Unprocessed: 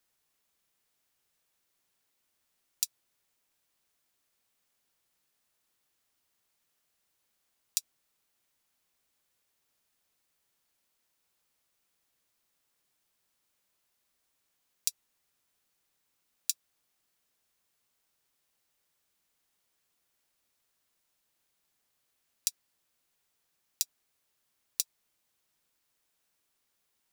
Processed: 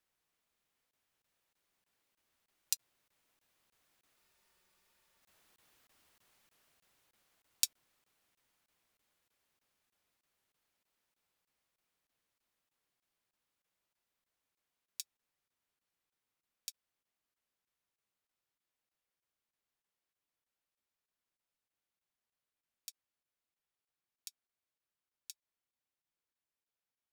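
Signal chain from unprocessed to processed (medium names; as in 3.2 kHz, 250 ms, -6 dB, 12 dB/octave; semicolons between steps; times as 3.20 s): Doppler pass-by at 5.60 s, 13 m/s, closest 14 m; tone controls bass 0 dB, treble -6 dB; crackling interface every 0.31 s, samples 1024, zero, from 0.91 s; spectral freeze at 4.18 s, 1.04 s; trim +11.5 dB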